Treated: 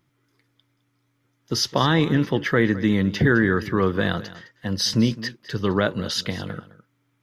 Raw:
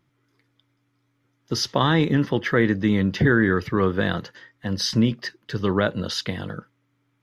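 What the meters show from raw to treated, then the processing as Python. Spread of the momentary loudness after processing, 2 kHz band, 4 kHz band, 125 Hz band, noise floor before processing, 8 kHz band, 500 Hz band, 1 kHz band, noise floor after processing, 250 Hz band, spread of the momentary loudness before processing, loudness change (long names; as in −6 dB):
12 LU, +0.5 dB, +2.0 dB, 0.0 dB, −70 dBFS, +3.0 dB, 0.0 dB, 0.0 dB, −70 dBFS, 0.0 dB, 12 LU, +0.5 dB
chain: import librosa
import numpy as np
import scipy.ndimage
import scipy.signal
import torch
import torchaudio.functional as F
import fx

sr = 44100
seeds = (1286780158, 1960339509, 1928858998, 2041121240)

p1 = fx.high_shelf(x, sr, hz=6400.0, db=6.0)
y = p1 + fx.echo_single(p1, sr, ms=210, db=-17.0, dry=0)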